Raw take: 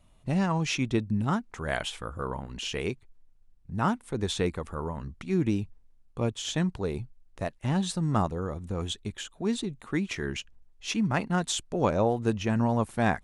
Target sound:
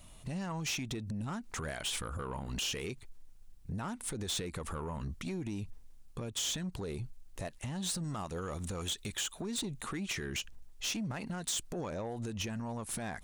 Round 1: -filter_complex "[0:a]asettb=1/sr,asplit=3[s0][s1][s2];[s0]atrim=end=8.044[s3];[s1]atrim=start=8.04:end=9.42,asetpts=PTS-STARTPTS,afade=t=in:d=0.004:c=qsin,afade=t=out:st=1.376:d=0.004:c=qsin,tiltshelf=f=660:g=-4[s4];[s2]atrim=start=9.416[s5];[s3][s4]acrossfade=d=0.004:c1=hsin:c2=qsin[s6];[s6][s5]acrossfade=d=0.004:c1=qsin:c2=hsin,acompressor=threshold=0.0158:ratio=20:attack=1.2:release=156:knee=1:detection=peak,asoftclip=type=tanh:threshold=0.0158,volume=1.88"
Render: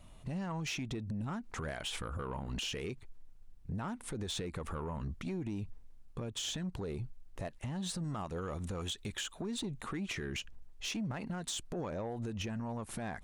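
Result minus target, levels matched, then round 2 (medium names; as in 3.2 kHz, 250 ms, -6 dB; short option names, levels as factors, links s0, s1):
8 kHz band -4.5 dB
-filter_complex "[0:a]asettb=1/sr,asplit=3[s0][s1][s2];[s0]atrim=end=8.044[s3];[s1]atrim=start=8.04:end=9.42,asetpts=PTS-STARTPTS,afade=t=in:d=0.004:c=qsin,afade=t=out:st=1.376:d=0.004:c=qsin,tiltshelf=f=660:g=-4[s4];[s2]atrim=start=9.416[s5];[s3][s4]acrossfade=d=0.004:c1=hsin:c2=qsin[s6];[s6][s5]acrossfade=d=0.004:c1=qsin:c2=hsin,acompressor=threshold=0.0158:ratio=20:attack=1.2:release=156:knee=1:detection=peak,highshelf=f=3500:g=11,asoftclip=type=tanh:threshold=0.0158,volume=1.88"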